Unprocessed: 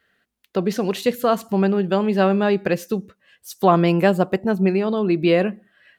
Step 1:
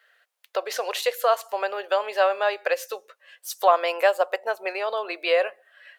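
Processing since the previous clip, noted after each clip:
elliptic high-pass filter 530 Hz, stop band 70 dB
in parallel at 0 dB: downward compressor, threshold −32 dBFS, peak gain reduction 19 dB
on the sum: level −1.5 dB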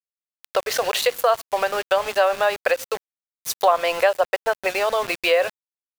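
centre clipping without the shift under −33 dBFS
downward compressor 2 to 1, threshold −27 dBFS, peak gain reduction 8.5 dB
level +8 dB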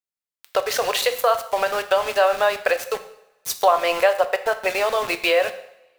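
coupled-rooms reverb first 0.68 s, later 2.2 s, from −25 dB, DRR 8.5 dB

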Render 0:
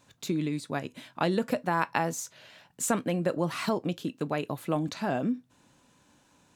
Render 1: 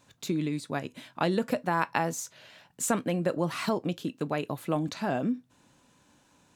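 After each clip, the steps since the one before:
no processing that can be heard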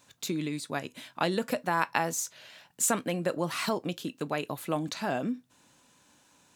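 spectral tilt +1.5 dB per octave

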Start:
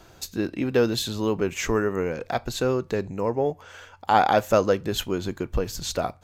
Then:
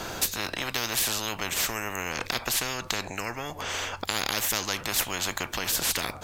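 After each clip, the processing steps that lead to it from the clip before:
dynamic equaliser 4,700 Hz, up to −5 dB, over −49 dBFS, Q 1.9
every bin compressed towards the loudest bin 10 to 1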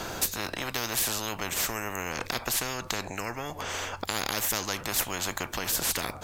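dynamic equaliser 3,200 Hz, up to −4 dB, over −40 dBFS, Q 0.72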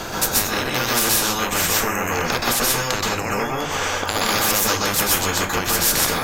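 convolution reverb RT60 0.35 s, pre-delay 117 ms, DRR −4 dB
level +6 dB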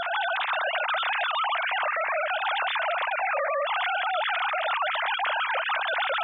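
three sine waves on the formant tracks
brickwall limiter −18 dBFS, peak gain reduction 10.5 dB
level −1.5 dB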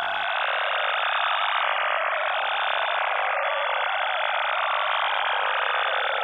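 every bin's largest magnitude spread in time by 480 ms
level −6 dB

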